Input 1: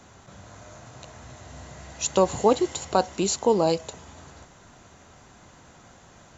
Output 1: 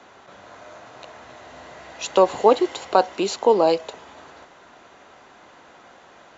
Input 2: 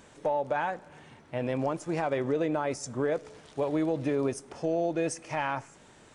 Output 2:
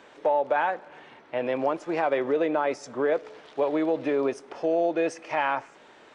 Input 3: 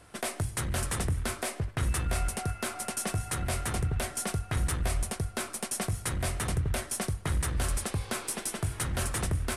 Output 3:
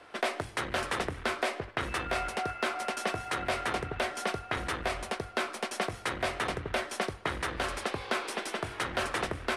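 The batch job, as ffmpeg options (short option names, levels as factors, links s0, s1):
-filter_complex "[0:a]acrossover=split=280 4600:gain=0.112 1 0.1[s0][s1][s2];[s0][s1][s2]amix=inputs=3:normalize=0,volume=1.88"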